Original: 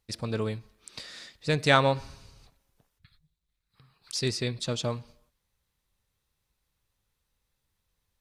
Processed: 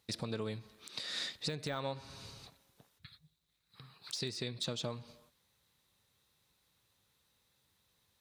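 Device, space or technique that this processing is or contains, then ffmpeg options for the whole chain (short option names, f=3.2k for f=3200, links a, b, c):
broadcast voice chain: -af "highpass=110,deesser=0.75,acompressor=threshold=-39dB:ratio=5,equalizer=f=3.8k:t=o:w=0.31:g=6,alimiter=level_in=6dB:limit=-24dB:level=0:latency=1:release=246,volume=-6dB,volume=5dB"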